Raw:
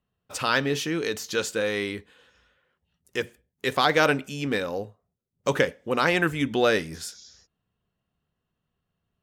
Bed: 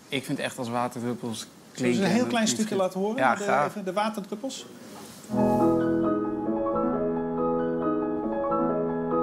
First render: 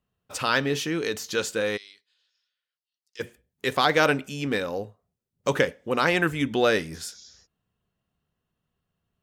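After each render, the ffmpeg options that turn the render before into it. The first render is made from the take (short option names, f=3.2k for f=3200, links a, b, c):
-filter_complex "[0:a]asplit=3[a][b][c];[a]afade=t=out:st=1.76:d=0.02[d];[b]bandpass=f=4.7k:t=q:w=4.3,afade=t=in:st=1.76:d=0.02,afade=t=out:st=3.19:d=0.02[e];[c]afade=t=in:st=3.19:d=0.02[f];[d][e][f]amix=inputs=3:normalize=0"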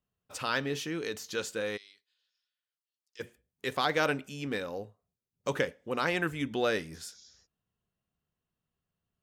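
-af "volume=-7.5dB"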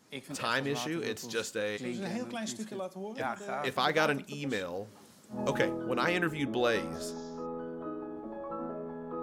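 -filter_complex "[1:a]volume=-13dB[a];[0:a][a]amix=inputs=2:normalize=0"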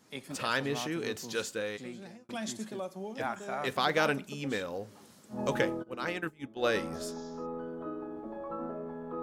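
-filter_complex "[0:a]asplit=3[a][b][c];[a]afade=t=out:st=5.82:d=0.02[d];[b]agate=range=-33dB:threshold=-24dB:ratio=3:release=100:detection=peak,afade=t=in:st=5.82:d=0.02,afade=t=out:st=6.62:d=0.02[e];[c]afade=t=in:st=6.62:d=0.02[f];[d][e][f]amix=inputs=3:normalize=0,asplit=2[g][h];[g]atrim=end=2.29,asetpts=PTS-STARTPTS,afade=t=out:st=1.5:d=0.79[i];[h]atrim=start=2.29,asetpts=PTS-STARTPTS,afade=t=in:d=0.004:c=hsin[j];[i][j]concat=n=2:v=0:a=1"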